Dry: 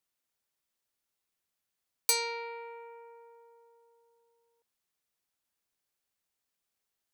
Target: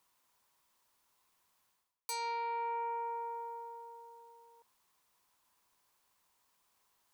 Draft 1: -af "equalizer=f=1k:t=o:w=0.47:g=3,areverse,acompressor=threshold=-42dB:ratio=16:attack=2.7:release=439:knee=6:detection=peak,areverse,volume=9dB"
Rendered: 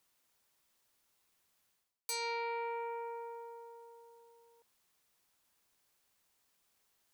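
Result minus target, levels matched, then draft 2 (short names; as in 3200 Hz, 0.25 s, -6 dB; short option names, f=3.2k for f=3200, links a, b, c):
1000 Hz band -4.0 dB
-af "equalizer=f=1k:t=o:w=0.47:g=13.5,areverse,acompressor=threshold=-42dB:ratio=16:attack=2.7:release=439:knee=6:detection=peak,areverse,volume=9dB"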